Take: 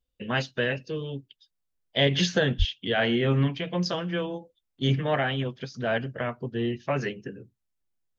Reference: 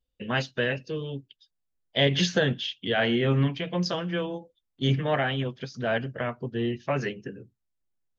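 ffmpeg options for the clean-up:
-filter_complex "[0:a]asplit=3[a][b][c];[a]afade=t=out:st=2.58:d=0.02[d];[b]highpass=f=140:w=0.5412,highpass=f=140:w=1.3066,afade=t=in:st=2.58:d=0.02,afade=t=out:st=2.7:d=0.02[e];[c]afade=t=in:st=2.7:d=0.02[f];[d][e][f]amix=inputs=3:normalize=0"

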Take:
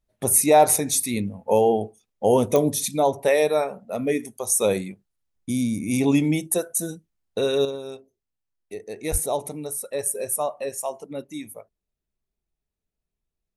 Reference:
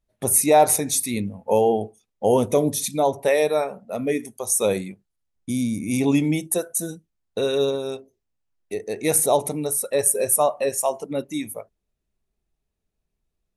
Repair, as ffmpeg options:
-filter_complex "[0:a]adeclick=t=4,asplit=3[a][b][c];[a]afade=t=out:st=9.11:d=0.02[d];[b]highpass=f=140:w=0.5412,highpass=f=140:w=1.3066,afade=t=in:st=9.11:d=0.02,afade=t=out:st=9.23:d=0.02[e];[c]afade=t=in:st=9.23:d=0.02[f];[d][e][f]amix=inputs=3:normalize=0,asetnsamples=n=441:p=0,asendcmd='7.65 volume volume 6.5dB',volume=0dB"

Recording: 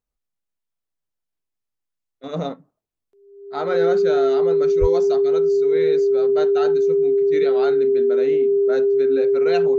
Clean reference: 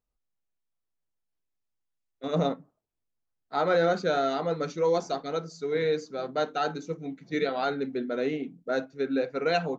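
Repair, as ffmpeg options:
-filter_complex "[0:a]bandreject=f=400:w=30,asplit=3[a][b][c];[a]afade=t=out:st=4.8:d=0.02[d];[b]highpass=f=140:w=0.5412,highpass=f=140:w=1.3066,afade=t=in:st=4.8:d=0.02,afade=t=out:st=4.92:d=0.02[e];[c]afade=t=in:st=4.92:d=0.02[f];[d][e][f]amix=inputs=3:normalize=0"

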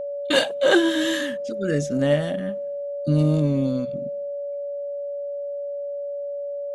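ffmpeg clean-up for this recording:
-af "bandreject=f=570:w=30"

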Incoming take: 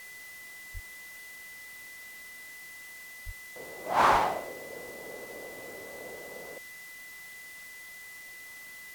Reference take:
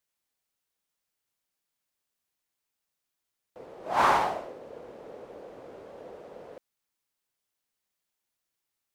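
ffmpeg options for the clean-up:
-filter_complex "[0:a]bandreject=f=2k:w=30,asplit=3[a][b][c];[a]afade=t=out:st=0.73:d=0.02[d];[b]highpass=f=140:w=0.5412,highpass=f=140:w=1.3066,afade=t=in:st=0.73:d=0.02,afade=t=out:st=0.85:d=0.02[e];[c]afade=t=in:st=0.85:d=0.02[f];[d][e][f]amix=inputs=3:normalize=0,asplit=3[g][h][i];[g]afade=t=out:st=3.25:d=0.02[j];[h]highpass=f=140:w=0.5412,highpass=f=140:w=1.3066,afade=t=in:st=3.25:d=0.02,afade=t=out:st=3.37:d=0.02[k];[i]afade=t=in:st=3.37:d=0.02[l];[j][k][l]amix=inputs=3:normalize=0,asplit=3[m][n][o];[m]afade=t=out:st=4.11:d=0.02[p];[n]highpass=f=140:w=0.5412,highpass=f=140:w=1.3066,afade=t=in:st=4.11:d=0.02,afade=t=out:st=4.23:d=0.02[q];[o]afade=t=in:st=4.23:d=0.02[r];[p][q][r]amix=inputs=3:normalize=0,afftdn=nr=30:nf=-47"

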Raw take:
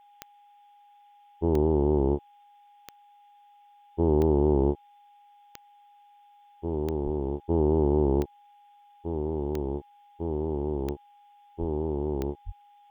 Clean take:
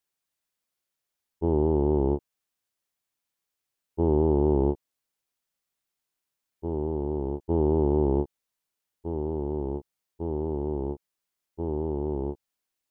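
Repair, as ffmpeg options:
-filter_complex "[0:a]adeclick=t=4,bandreject=f=820:w=30,asplit=3[a][b][c];[a]afade=t=out:st=7.04:d=0.02[d];[b]highpass=f=140:w=0.5412,highpass=f=140:w=1.3066,afade=t=in:st=7.04:d=0.02,afade=t=out:st=7.16:d=0.02[e];[c]afade=t=in:st=7.16:d=0.02[f];[d][e][f]amix=inputs=3:normalize=0,asplit=3[g][h][i];[g]afade=t=out:st=11.59:d=0.02[j];[h]highpass=f=140:w=0.5412,highpass=f=140:w=1.3066,afade=t=in:st=11.59:d=0.02,afade=t=out:st=11.71:d=0.02[k];[i]afade=t=in:st=11.71:d=0.02[l];[j][k][l]amix=inputs=3:normalize=0,asplit=3[m][n][o];[m]afade=t=out:st=12.45:d=0.02[p];[n]highpass=f=140:w=0.5412,highpass=f=140:w=1.3066,afade=t=in:st=12.45:d=0.02,afade=t=out:st=12.57:d=0.02[q];[o]afade=t=in:st=12.57:d=0.02[r];[p][q][r]amix=inputs=3:normalize=0,afftdn=nr=28:nf=-57"

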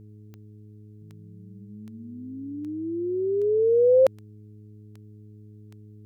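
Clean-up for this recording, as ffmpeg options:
-af "adeclick=t=4,bandreject=f=105.6:t=h:w=4,bandreject=f=211.2:t=h:w=4,bandreject=f=316.8:t=h:w=4,bandreject=f=422.4:t=h:w=4"

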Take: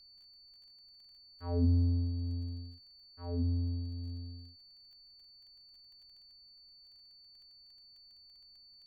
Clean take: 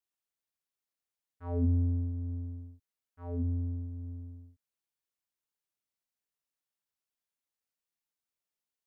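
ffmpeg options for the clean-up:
-af "adeclick=t=4,bandreject=f=4.5k:w=30,agate=range=-21dB:threshold=-51dB"

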